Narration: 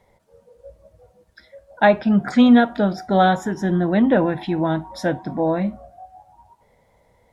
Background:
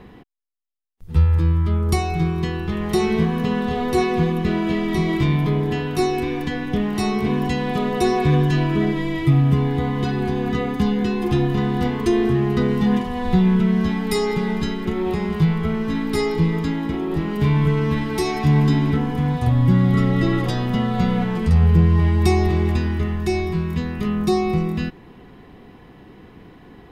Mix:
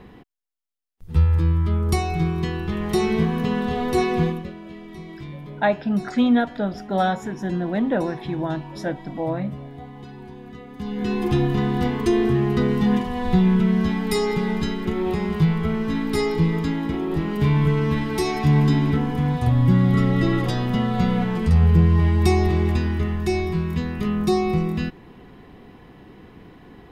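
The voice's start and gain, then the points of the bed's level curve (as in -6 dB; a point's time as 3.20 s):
3.80 s, -5.5 dB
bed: 4.27 s -1.5 dB
4.54 s -17.5 dB
10.68 s -17.5 dB
11.12 s -1 dB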